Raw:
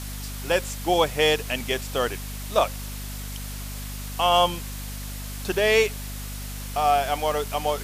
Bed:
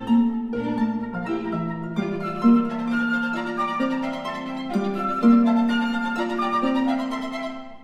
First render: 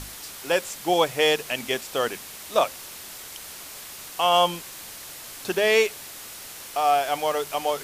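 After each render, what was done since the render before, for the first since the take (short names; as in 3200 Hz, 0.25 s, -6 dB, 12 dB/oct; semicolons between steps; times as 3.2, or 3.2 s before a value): notches 50/100/150/200/250 Hz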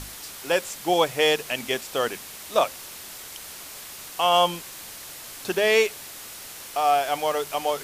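nothing audible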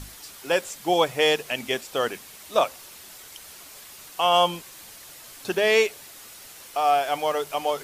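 denoiser 6 dB, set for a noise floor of -41 dBFS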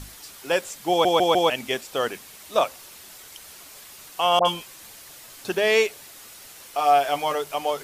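0.9 stutter in place 0.15 s, 4 plays; 4.39–5.44 dispersion highs, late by 62 ms, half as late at 1100 Hz; 6.77–7.35 doubler 14 ms -5 dB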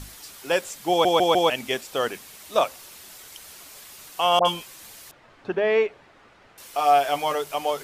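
5.11–6.58 LPF 1700 Hz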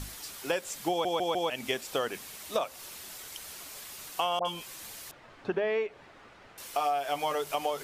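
compressor 10:1, threshold -26 dBFS, peak gain reduction 13 dB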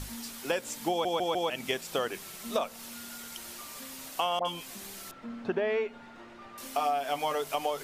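add bed -26.5 dB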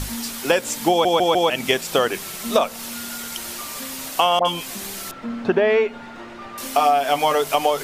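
gain +12 dB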